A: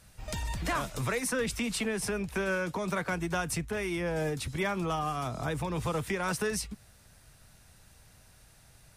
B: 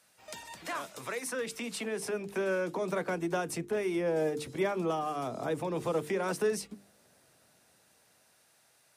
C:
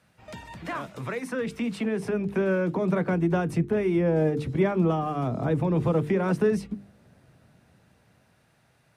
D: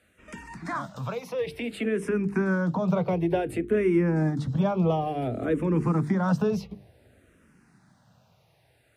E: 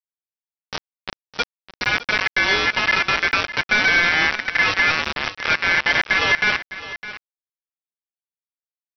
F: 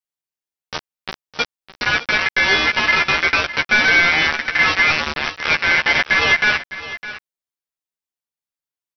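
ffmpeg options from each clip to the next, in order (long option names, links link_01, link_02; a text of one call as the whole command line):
ffmpeg -i in.wav -filter_complex "[0:a]highpass=330,bandreject=frequency=50:width_type=h:width=6,bandreject=frequency=100:width_type=h:width=6,bandreject=frequency=150:width_type=h:width=6,bandreject=frequency=200:width_type=h:width=6,bandreject=frequency=250:width_type=h:width=6,bandreject=frequency=300:width_type=h:width=6,bandreject=frequency=350:width_type=h:width=6,bandreject=frequency=400:width_type=h:width=6,bandreject=frequency=450:width_type=h:width=6,acrossover=split=590[link_01][link_02];[link_01]dynaudnorm=framelen=370:gausssize=11:maxgain=12.5dB[link_03];[link_03][link_02]amix=inputs=2:normalize=0,volume=-5dB" out.wav
ffmpeg -i in.wav -af "bass=frequency=250:gain=15,treble=frequency=4000:gain=-13,volume=3.5dB" out.wav
ffmpeg -i in.wav -filter_complex "[0:a]asplit=2[link_01][link_02];[link_02]afreqshift=-0.56[link_03];[link_01][link_03]amix=inputs=2:normalize=1,volume=3dB" out.wav
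ffmpeg -i in.wav -af "aresample=8000,acrusher=bits=3:mix=0:aa=0.000001,aresample=44100,aeval=exprs='val(0)*sin(2*PI*1900*n/s)':channel_layout=same,aecho=1:1:609:0.188,volume=7dB" out.wav
ffmpeg -i in.wav -filter_complex "[0:a]asplit=2[link_01][link_02];[link_02]adelay=13,volume=-4dB[link_03];[link_01][link_03]amix=inputs=2:normalize=0,volume=1dB" out.wav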